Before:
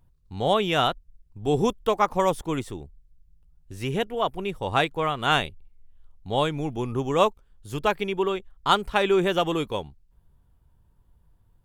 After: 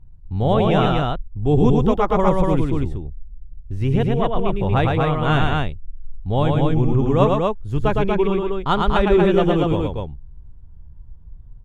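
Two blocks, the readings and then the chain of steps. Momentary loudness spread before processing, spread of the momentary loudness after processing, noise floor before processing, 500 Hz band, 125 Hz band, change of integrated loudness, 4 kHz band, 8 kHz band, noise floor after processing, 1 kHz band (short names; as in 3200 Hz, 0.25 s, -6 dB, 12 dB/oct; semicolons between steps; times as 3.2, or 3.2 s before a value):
10 LU, 10 LU, -62 dBFS, +6.0 dB, +14.0 dB, +6.0 dB, -2.0 dB, n/a, -41 dBFS, +3.0 dB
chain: RIAA curve playback; on a send: loudspeakers at several distances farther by 38 m -3 dB, 82 m -3 dB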